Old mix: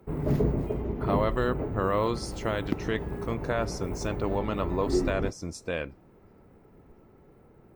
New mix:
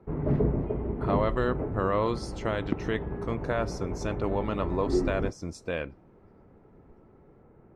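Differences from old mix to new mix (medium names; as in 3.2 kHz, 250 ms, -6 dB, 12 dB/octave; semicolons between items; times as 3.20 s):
speech: add treble shelf 5.9 kHz -9 dB; background: add low-pass 2 kHz 12 dB/octave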